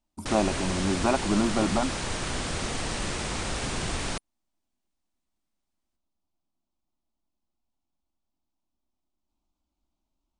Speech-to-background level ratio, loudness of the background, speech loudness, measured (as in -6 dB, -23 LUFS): 3.5 dB, -31.0 LUFS, -27.5 LUFS